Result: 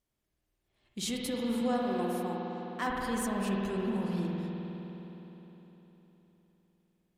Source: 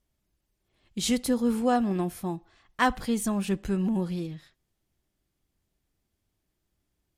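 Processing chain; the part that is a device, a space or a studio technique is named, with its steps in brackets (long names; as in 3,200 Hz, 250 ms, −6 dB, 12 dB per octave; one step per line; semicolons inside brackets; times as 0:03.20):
0:01.61–0:02.87: high-pass filter 240 Hz
clipper into limiter (hard clipping −14 dBFS, distortion −25 dB; brickwall limiter −19.5 dBFS, peak gain reduction 5.5 dB)
low-shelf EQ 170 Hz −6 dB
spring reverb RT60 3.9 s, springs 51 ms, chirp 50 ms, DRR −2.5 dB
level −5 dB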